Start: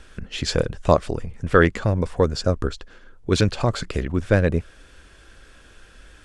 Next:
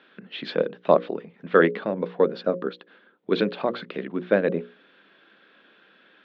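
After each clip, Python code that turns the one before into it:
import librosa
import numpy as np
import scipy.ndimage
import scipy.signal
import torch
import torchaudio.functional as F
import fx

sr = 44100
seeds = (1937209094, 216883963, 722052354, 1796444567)

y = scipy.signal.sosfilt(scipy.signal.cheby1(4, 1.0, [180.0, 3800.0], 'bandpass', fs=sr, output='sos'), x)
y = fx.hum_notches(y, sr, base_hz=60, count=9)
y = fx.dynamic_eq(y, sr, hz=510.0, q=0.85, threshold_db=-28.0, ratio=4.0, max_db=5)
y = y * librosa.db_to_amplitude(-3.5)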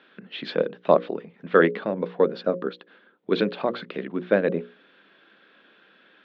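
y = x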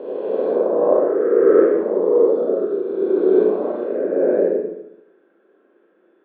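y = fx.spec_swells(x, sr, rise_s=2.72)
y = fx.ladder_bandpass(y, sr, hz=410.0, resonance_pct=55)
y = fx.rev_schroeder(y, sr, rt60_s=0.84, comb_ms=29, drr_db=-3.5)
y = y * librosa.db_to_amplitude(4.5)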